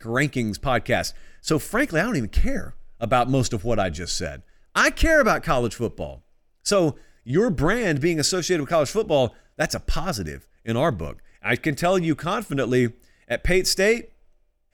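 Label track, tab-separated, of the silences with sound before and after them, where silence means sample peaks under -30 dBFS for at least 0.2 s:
1.160000	1.460000	silence
2.690000	3.020000	silence
4.360000	4.750000	silence
6.120000	6.660000	silence
6.910000	7.280000	silence
9.280000	9.590000	silence
10.370000	10.680000	silence
11.120000	11.450000	silence
12.900000	13.300000	silence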